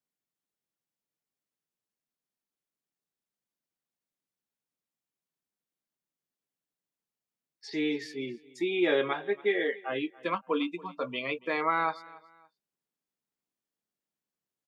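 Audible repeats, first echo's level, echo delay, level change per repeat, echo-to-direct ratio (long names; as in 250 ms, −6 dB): 2, −21.5 dB, 282 ms, −10.0 dB, −21.0 dB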